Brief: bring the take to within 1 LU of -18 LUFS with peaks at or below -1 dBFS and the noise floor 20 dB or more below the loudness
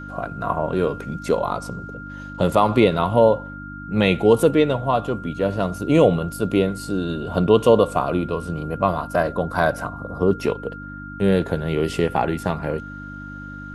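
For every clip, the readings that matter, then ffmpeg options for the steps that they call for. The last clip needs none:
hum 50 Hz; highest harmonic 300 Hz; hum level -34 dBFS; steady tone 1.4 kHz; tone level -36 dBFS; loudness -21.0 LUFS; peak level -2.5 dBFS; loudness target -18.0 LUFS
-> -af "bandreject=f=50:t=h:w=4,bandreject=f=100:t=h:w=4,bandreject=f=150:t=h:w=4,bandreject=f=200:t=h:w=4,bandreject=f=250:t=h:w=4,bandreject=f=300:t=h:w=4"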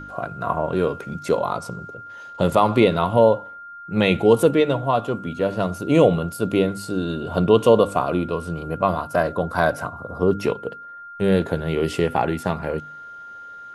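hum not found; steady tone 1.4 kHz; tone level -36 dBFS
-> -af "bandreject=f=1400:w=30"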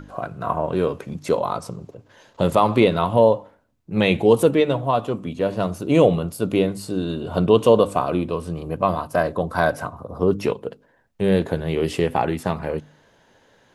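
steady tone not found; loudness -21.0 LUFS; peak level -2.5 dBFS; loudness target -18.0 LUFS
-> -af "volume=1.41,alimiter=limit=0.891:level=0:latency=1"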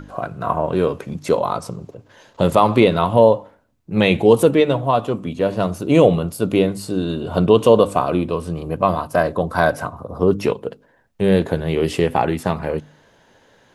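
loudness -18.5 LUFS; peak level -1.0 dBFS; noise floor -56 dBFS

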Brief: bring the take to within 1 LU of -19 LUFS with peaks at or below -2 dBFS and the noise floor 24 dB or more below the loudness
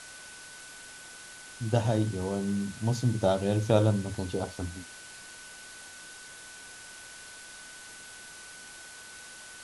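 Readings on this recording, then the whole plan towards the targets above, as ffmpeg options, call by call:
steady tone 1.5 kHz; tone level -49 dBFS; noise floor -47 dBFS; noise floor target -53 dBFS; loudness -29.0 LUFS; peak level -8.5 dBFS; loudness target -19.0 LUFS
-> -af "bandreject=f=1500:w=30"
-af "afftdn=nr=6:nf=-47"
-af "volume=3.16,alimiter=limit=0.794:level=0:latency=1"

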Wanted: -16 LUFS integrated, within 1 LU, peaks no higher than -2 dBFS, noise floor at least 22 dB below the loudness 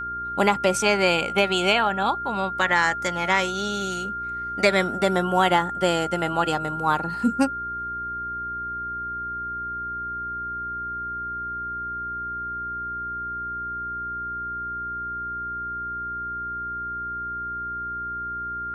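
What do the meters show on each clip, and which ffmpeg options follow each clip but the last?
hum 60 Hz; highest harmonic 420 Hz; hum level -43 dBFS; steady tone 1.4 kHz; tone level -28 dBFS; loudness -25.5 LUFS; peak level -4.5 dBFS; loudness target -16.0 LUFS
-> -af "bandreject=f=60:t=h:w=4,bandreject=f=120:t=h:w=4,bandreject=f=180:t=h:w=4,bandreject=f=240:t=h:w=4,bandreject=f=300:t=h:w=4,bandreject=f=360:t=h:w=4,bandreject=f=420:t=h:w=4"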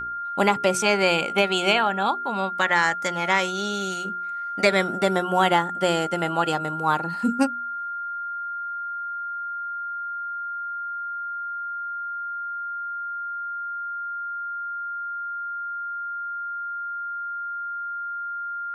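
hum not found; steady tone 1.4 kHz; tone level -28 dBFS
-> -af "bandreject=f=1400:w=30"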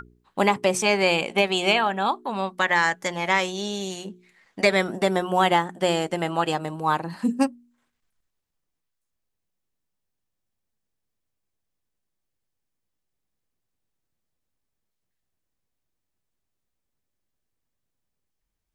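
steady tone not found; loudness -23.0 LUFS; peak level -5.0 dBFS; loudness target -16.0 LUFS
-> -af "volume=2.24,alimiter=limit=0.794:level=0:latency=1"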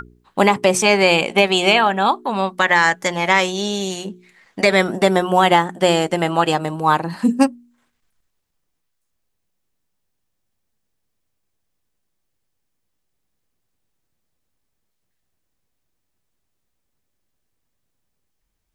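loudness -16.5 LUFS; peak level -2.0 dBFS; noise floor -73 dBFS

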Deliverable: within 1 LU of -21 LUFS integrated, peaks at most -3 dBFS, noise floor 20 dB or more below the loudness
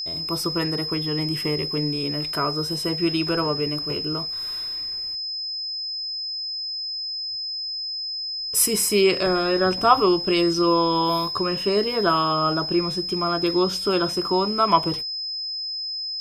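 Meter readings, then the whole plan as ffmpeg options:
steady tone 5.1 kHz; tone level -27 dBFS; loudness -22.5 LUFS; peak level -3.0 dBFS; loudness target -21.0 LUFS
-> -af "bandreject=f=5100:w=30"
-af "volume=1.19,alimiter=limit=0.708:level=0:latency=1"

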